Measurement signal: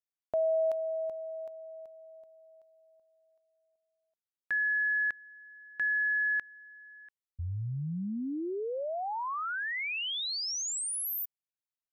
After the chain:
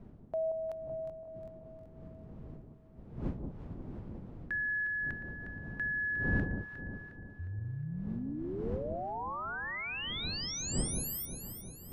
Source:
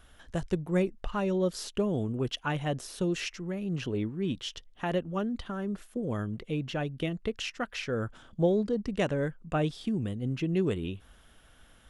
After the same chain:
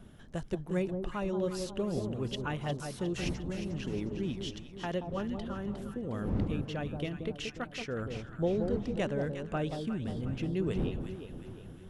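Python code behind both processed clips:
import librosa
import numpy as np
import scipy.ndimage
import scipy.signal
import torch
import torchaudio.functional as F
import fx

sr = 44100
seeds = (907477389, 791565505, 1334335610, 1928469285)

y = fx.dmg_wind(x, sr, seeds[0], corner_hz=200.0, level_db=-39.0)
y = fx.echo_alternate(y, sr, ms=179, hz=970.0, feedback_pct=69, wet_db=-5.5)
y = y * 10.0 ** (-5.0 / 20.0)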